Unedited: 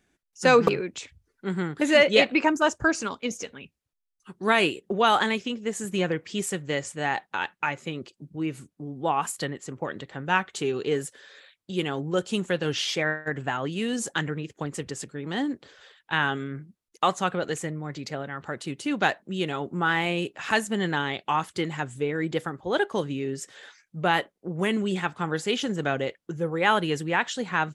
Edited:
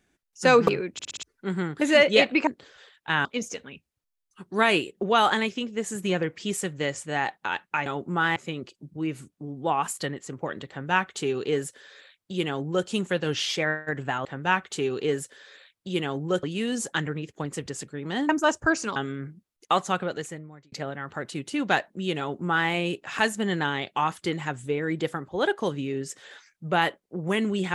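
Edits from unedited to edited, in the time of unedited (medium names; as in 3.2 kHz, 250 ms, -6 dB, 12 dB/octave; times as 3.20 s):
0.93 s: stutter in place 0.06 s, 5 plays
2.47–3.14 s: swap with 15.50–16.28 s
10.08–12.26 s: copy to 13.64 s
17.26–18.04 s: fade out
19.51–20.01 s: copy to 7.75 s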